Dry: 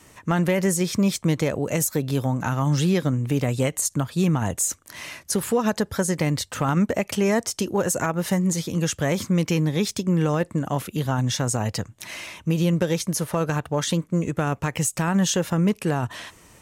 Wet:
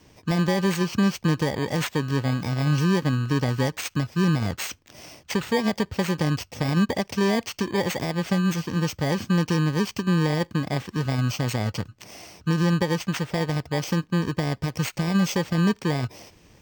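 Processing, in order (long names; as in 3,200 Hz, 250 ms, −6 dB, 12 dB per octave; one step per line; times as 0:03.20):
samples in bit-reversed order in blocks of 32 samples
moving average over 4 samples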